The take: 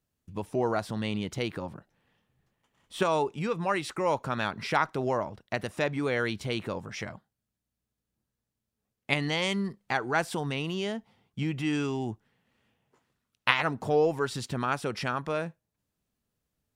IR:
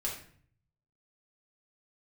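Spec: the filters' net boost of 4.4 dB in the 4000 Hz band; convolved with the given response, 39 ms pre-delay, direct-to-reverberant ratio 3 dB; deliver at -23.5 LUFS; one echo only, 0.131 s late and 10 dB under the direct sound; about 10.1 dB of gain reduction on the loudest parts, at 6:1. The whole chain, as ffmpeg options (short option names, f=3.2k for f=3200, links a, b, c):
-filter_complex "[0:a]equalizer=f=4k:t=o:g=6,acompressor=threshold=-28dB:ratio=6,aecho=1:1:131:0.316,asplit=2[a][b];[1:a]atrim=start_sample=2205,adelay=39[c];[b][c]afir=irnorm=-1:irlink=0,volume=-6dB[d];[a][d]amix=inputs=2:normalize=0,volume=8.5dB"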